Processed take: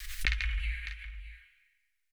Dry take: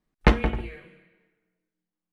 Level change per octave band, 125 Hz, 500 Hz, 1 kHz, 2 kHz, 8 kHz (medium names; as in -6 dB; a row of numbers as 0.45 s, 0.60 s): -10.0 dB, under -30 dB, -23.5 dB, -2.5 dB, no reading